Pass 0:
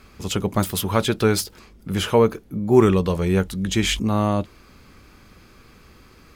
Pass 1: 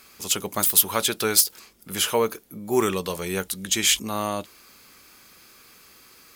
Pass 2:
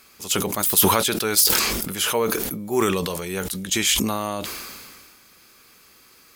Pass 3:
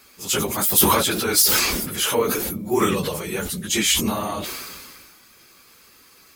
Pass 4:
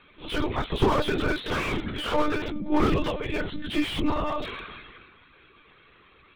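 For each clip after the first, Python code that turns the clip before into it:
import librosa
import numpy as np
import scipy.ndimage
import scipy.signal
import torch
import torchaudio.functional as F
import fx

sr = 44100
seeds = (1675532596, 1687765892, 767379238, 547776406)

y1 = fx.riaa(x, sr, side='recording')
y1 = y1 * librosa.db_to_amplitude(-3.0)
y2 = fx.sustainer(y1, sr, db_per_s=30.0)
y2 = y2 * librosa.db_to_amplitude(-1.0)
y3 = fx.phase_scramble(y2, sr, seeds[0], window_ms=50)
y3 = y3 * librosa.db_to_amplitude(1.0)
y4 = fx.spec_quant(y3, sr, step_db=15)
y4 = fx.lpc_monotone(y4, sr, seeds[1], pitch_hz=300.0, order=16)
y4 = fx.slew_limit(y4, sr, full_power_hz=73.0)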